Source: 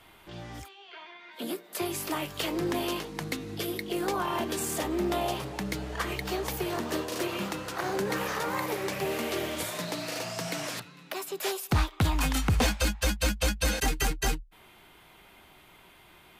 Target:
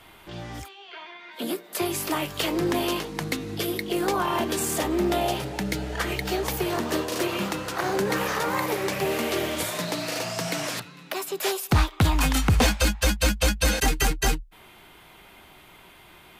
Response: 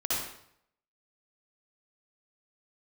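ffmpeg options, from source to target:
-filter_complex "[0:a]asettb=1/sr,asplit=3[link_01][link_02][link_03];[link_01]atrim=end=5.114[link_04];[link_02]atrim=start=5.11:end=6.43,asetpts=PTS-STARTPTS,afade=type=in:duration=0.004:curve=qsin,afade=type=out:start_time=1.316:duration=0.004:curve=qsin,bandreject=frequency=1100:width=5.3[link_05];[link_03]atrim=start=6.426[link_06];[link_04][link_05]acrossfade=duration=0.004:curve1=hsin:curve2=qsin[link_07];[link_07][link_06]acrossfade=duration=0.004:curve1=qsin:curve2=hsin,volume=5dB"

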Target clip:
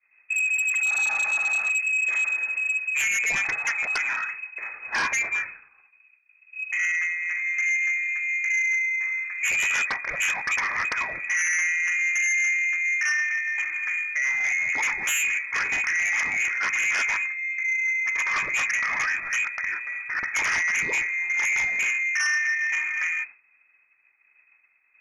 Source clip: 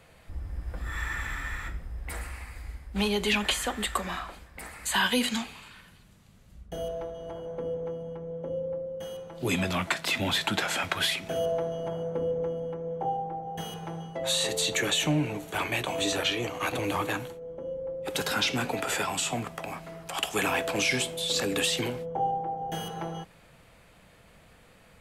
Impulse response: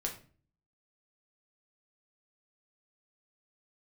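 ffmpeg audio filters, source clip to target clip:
-af "equalizer=frequency=250:width_type=o:width=1:gain=-10,equalizer=frequency=1000:width_type=o:width=1:gain=-3,equalizer=frequency=2000:width_type=o:width=1:gain=-12,lowpass=frequency=2200:width_type=q:width=0.5098,lowpass=frequency=2200:width_type=q:width=0.6013,lowpass=frequency=2200:width_type=q:width=0.9,lowpass=frequency=2200:width_type=q:width=2.563,afreqshift=-2600,tiltshelf=frequency=970:gain=-5.5,aeval=exprs='0.15*sin(PI/2*3.55*val(0)/0.15)':channel_layout=same,agate=range=-33dB:threshold=-29dB:ratio=3:detection=peak,volume=-4dB"

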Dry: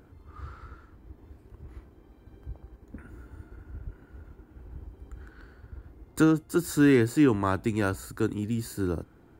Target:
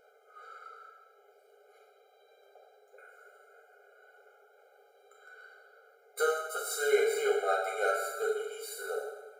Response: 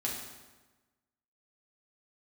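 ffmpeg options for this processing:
-filter_complex "[1:a]atrim=start_sample=2205[link_01];[0:a][link_01]afir=irnorm=-1:irlink=0,afftfilt=real='re*eq(mod(floor(b*sr/1024/410),2),1)':imag='im*eq(mod(floor(b*sr/1024/410),2),1)':win_size=1024:overlap=0.75"

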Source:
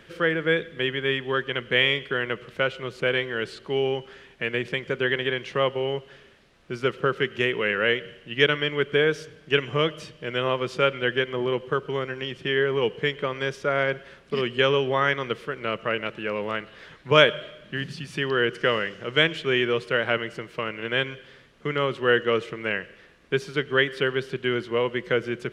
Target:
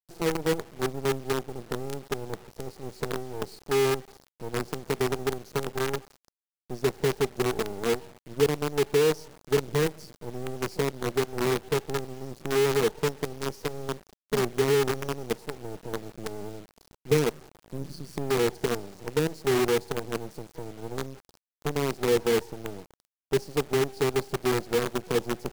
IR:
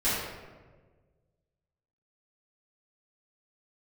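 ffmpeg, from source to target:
-af "afftfilt=real='re*(1-between(b*sr/4096,490,4200))':imag='im*(1-between(b*sr/4096,490,4200))':win_size=4096:overlap=0.75,acrusher=bits=5:dc=4:mix=0:aa=0.000001"

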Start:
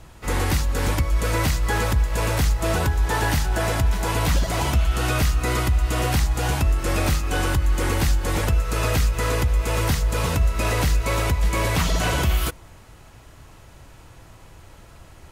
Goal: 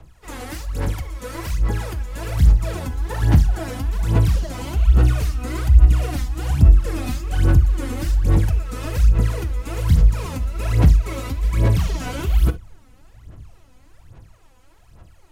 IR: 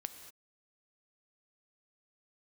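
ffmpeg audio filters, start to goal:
-filter_complex "[0:a]acrossover=split=310|570|6100[link_01][link_02][link_03][link_04];[link_01]dynaudnorm=framelen=180:gausssize=21:maxgain=11.5dB[link_05];[link_05][link_02][link_03][link_04]amix=inputs=4:normalize=0,aphaser=in_gain=1:out_gain=1:delay=4:decay=0.77:speed=1.2:type=sinusoidal[link_06];[1:a]atrim=start_sample=2205,atrim=end_sample=4410,asetrate=61740,aresample=44100[link_07];[link_06][link_07]afir=irnorm=-1:irlink=0,volume=-6dB"

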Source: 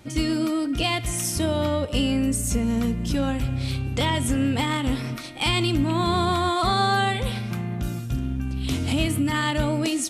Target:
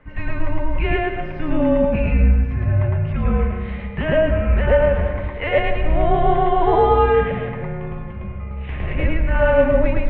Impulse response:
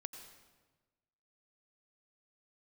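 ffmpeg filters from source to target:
-filter_complex "[0:a]asplit=2[link_01][link_02];[link_02]equalizer=frequency=900:width_type=o:width=0.26:gain=15[link_03];[1:a]atrim=start_sample=2205,lowshelf=frequency=430:gain=9,adelay=109[link_04];[link_03][link_04]afir=irnorm=-1:irlink=0,volume=3dB[link_05];[link_01][link_05]amix=inputs=2:normalize=0,highpass=frequency=220:width_type=q:width=0.5412,highpass=frequency=220:width_type=q:width=1.307,lowpass=frequency=2600:width_type=q:width=0.5176,lowpass=frequency=2600:width_type=q:width=0.7071,lowpass=frequency=2600:width_type=q:width=1.932,afreqshift=-330,volume=2dB"

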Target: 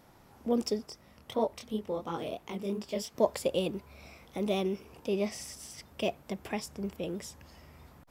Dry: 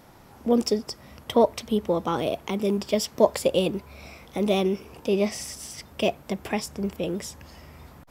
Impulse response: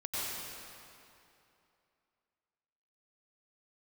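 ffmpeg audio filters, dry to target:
-filter_complex "[0:a]asplit=3[link_01][link_02][link_03];[link_01]afade=type=out:start_time=0.85:duration=0.02[link_04];[link_02]flanger=delay=18:depth=7.9:speed=2.8,afade=type=in:start_time=0.85:duration=0.02,afade=type=out:start_time=3.14:duration=0.02[link_05];[link_03]afade=type=in:start_time=3.14:duration=0.02[link_06];[link_04][link_05][link_06]amix=inputs=3:normalize=0,volume=-7.5dB"

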